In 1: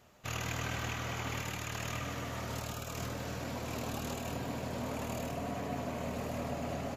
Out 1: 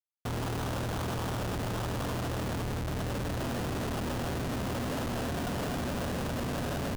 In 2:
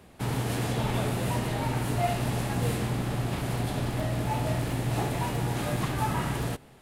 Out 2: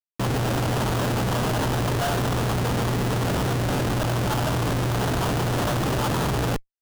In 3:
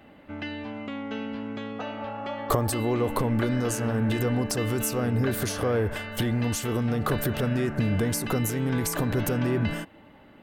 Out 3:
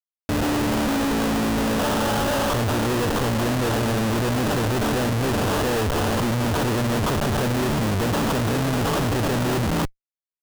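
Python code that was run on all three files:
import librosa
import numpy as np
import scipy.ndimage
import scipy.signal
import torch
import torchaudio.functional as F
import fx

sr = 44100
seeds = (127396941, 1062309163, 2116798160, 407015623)

y = scipy.signal.sosfilt(scipy.signal.cheby1(2, 1.0, 4600.0, 'lowpass', fs=sr, output='sos'), x)
y = fx.schmitt(y, sr, flips_db=-41.0)
y = fx.sample_hold(y, sr, seeds[0], rate_hz=2200.0, jitter_pct=20)
y = y * librosa.db_to_amplitude(6.5)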